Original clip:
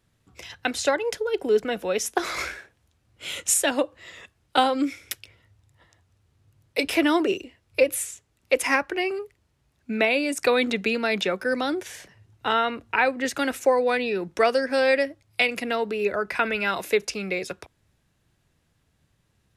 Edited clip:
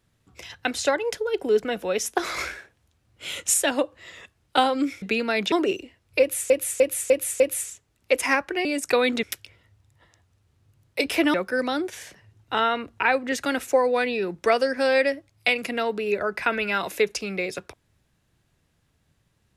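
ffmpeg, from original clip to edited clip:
-filter_complex "[0:a]asplit=10[s0][s1][s2][s3][s4][s5][s6][s7][s8][s9];[s0]atrim=end=5.022[s10];[s1]atrim=start=10.768:end=11.272[s11];[s2]atrim=start=7.128:end=8.112[s12];[s3]atrim=start=7.808:end=8.112[s13];[s4]atrim=start=7.808:end=8.112[s14];[s5]atrim=start=7.808:end=8.112[s15];[s6]atrim=start=7.808:end=9.062[s16];[s7]atrim=start=10.188:end=10.772[s17];[s8]atrim=start=5.018:end=7.132[s18];[s9]atrim=start=11.268[s19];[s10][s11]acrossfade=d=0.004:c1=hsin:c2=hsin[s20];[s20][s12]acrossfade=d=0.004:c1=hsin:c2=hsin[s21];[s21][s13]acrossfade=d=0.004:c1=hsin:c2=hsin[s22];[s22][s14]acrossfade=d=0.004:c1=hsin:c2=hsin[s23];[s23][s15]acrossfade=d=0.004:c1=hsin:c2=hsin[s24];[s24][s16]acrossfade=d=0.004:c1=hsin:c2=hsin[s25];[s25][s17]acrossfade=d=0.004:c1=hsin:c2=hsin[s26];[s26][s18]acrossfade=d=0.004:c1=hsin:c2=hsin[s27];[s27][s19]acrossfade=d=0.004:c1=hsin:c2=hsin"

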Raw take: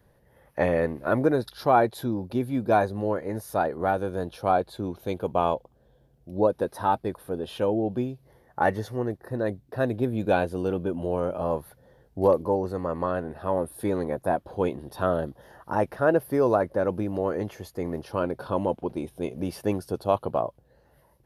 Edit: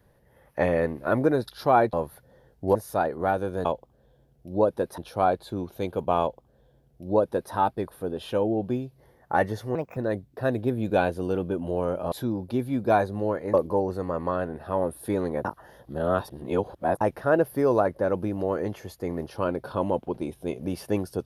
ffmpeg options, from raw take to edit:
-filter_complex "[0:a]asplit=11[s0][s1][s2][s3][s4][s5][s6][s7][s8][s9][s10];[s0]atrim=end=1.932[s11];[s1]atrim=start=11.468:end=12.292[s12];[s2]atrim=start=3.348:end=4.252[s13];[s3]atrim=start=5.468:end=6.802[s14];[s4]atrim=start=4.248:end=9.024[s15];[s5]atrim=start=9.02:end=9.32,asetpts=PTS-STARTPTS,asetrate=60858,aresample=44100[s16];[s6]atrim=start=9.316:end=11.472[s17];[s7]atrim=start=1.928:end=3.352[s18];[s8]atrim=start=12.288:end=14.202[s19];[s9]atrim=start=14.198:end=15.762,asetpts=PTS-STARTPTS,areverse[s20];[s10]atrim=start=15.758[s21];[s11][s12]acrossfade=d=0.004:c1=hsin:c2=hsin[s22];[s22][s13]acrossfade=d=0.004:c1=hsin:c2=hsin[s23];[s23][s14]acrossfade=d=0.004:c1=hsin:c2=hsin[s24];[s24][s15]acrossfade=d=0.004:c1=hsin:c2=hsin[s25];[s25][s16]acrossfade=d=0.004:c1=hsin:c2=hsin[s26];[s26][s17]acrossfade=d=0.004:c1=hsin:c2=hsin[s27];[s27][s18]acrossfade=d=0.004:c1=hsin:c2=hsin[s28];[s28][s19]acrossfade=d=0.004:c1=hsin:c2=hsin[s29];[s29][s20]acrossfade=d=0.004:c1=hsin:c2=hsin[s30];[s30][s21]acrossfade=d=0.004:c1=hsin:c2=hsin"

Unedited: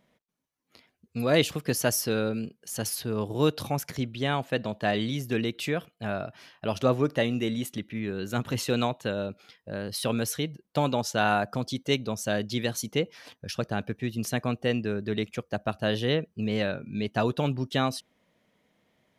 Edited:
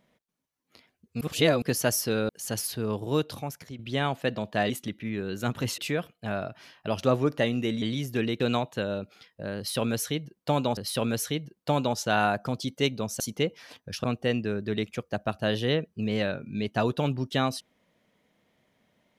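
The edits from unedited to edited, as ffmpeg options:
-filter_complex "[0:a]asplit=12[s0][s1][s2][s3][s4][s5][s6][s7][s8][s9][s10][s11];[s0]atrim=end=1.212[s12];[s1]atrim=start=1.208:end=1.622,asetpts=PTS-STARTPTS,areverse[s13];[s2]atrim=start=1.618:end=2.292[s14];[s3]atrim=start=2.568:end=4.07,asetpts=PTS-STARTPTS,afade=t=out:st=0.602:d=0.9:silence=0.237137[s15];[s4]atrim=start=4.07:end=4.982,asetpts=PTS-STARTPTS,afade=t=in:d=0.004:c=hsin:silence=0.237137[s16];[s5]atrim=start=7.598:end=8.682[s17];[s6]atrim=start=5.558:end=7.602[s18];[s7]atrim=start=4.978:end=5.562[s19];[s8]atrim=start=8.678:end=11.052[s20];[s9]atrim=start=9.848:end=12.282[s21];[s10]atrim=start=12.758:end=13.602[s22];[s11]atrim=start=14.438[s23];[s12][s13]acrossfade=d=0.004:c1=hsin:c2=hsin[s24];[s24][s14]acrossfade=d=0.004:c1=hsin:c2=hsin[s25];[s15][s16]concat=n=2:v=0:a=1[s26];[s25][s26]acrossfade=d=0.004:c1=hsin:c2=hsin[s27];[s27][s17]acrossfade=d=0.004:c1=hsin:c2=hsin[s28];[s28][s18]acrossfade=d=0.004:c1=hsin:c2=hsin[s29];[s29][s19]acrossfade=d=0.004:c1=hsin:c2=hsin[s30];[s30][s20]acrossfade=d=0.004:c1=hsin:c2=hsin[s31];[s31][s21]acrossfade=d=0.004:c1=hsin:c2=hsin[s32];[s32][s22]acrossfade=d=0.004:c1=hsin:c2=hsin[s33];[s33][s23]acrossfade=d=0.004:c1=hsin:c2=hsin"

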